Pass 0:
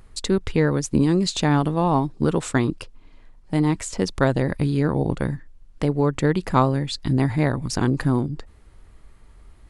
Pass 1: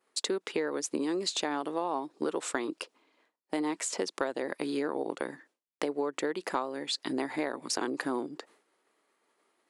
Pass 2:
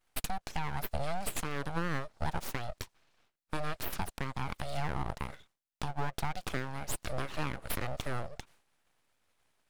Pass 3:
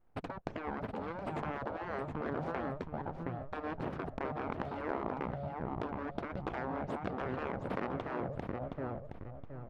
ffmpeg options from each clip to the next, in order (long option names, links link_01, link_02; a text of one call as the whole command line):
ffmpeg -i in.wav -af "highpass=frequency=320:width=0.5412,highpass=frequency=320:width=1.3066,agate=range=-33dB:threshold=-54dB:ratio=3:detection=peak,acompressor=threshold=-28dB:ratio=6" out.wav
ffmpeg -i in.wav -af "alimiter=limit=-19.5dB:level=0:latency=1:release=226,aeval=exprs='abs(val(0))':channel_layout=same" out.wav
ffmpeg -i in.wav -af "aecho=1:1:719|1438|2157|2876:0.447|0.138|0.0429|0.0133,afftfilt=real='re*lt(hypot(re,im),0.0501)':imag='im*lt(hypot(re,im),0.0501)':win_size=1024:overlap=0.75,adynamicsmooth=sensitivity=0.5:basefreq=780,volume=10dB" out.wav